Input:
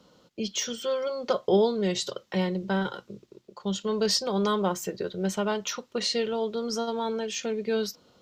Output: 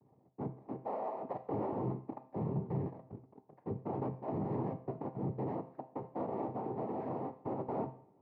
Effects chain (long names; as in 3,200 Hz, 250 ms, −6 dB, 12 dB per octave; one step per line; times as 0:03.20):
inverse Chebyshev low-pass filter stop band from 3,100 Hz, stop band 80 dB
cochlear-implant simulation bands 6
brickwall limiter −22 dBFS, peak gain reduction 11.5 dB
tuned comb filter 130 Hz, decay 0.43 s, harmonics all, mix 60%
coupled-rooms reverb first 0.55 s, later 1.5 s, from −18 dB, DRR 10.5 dB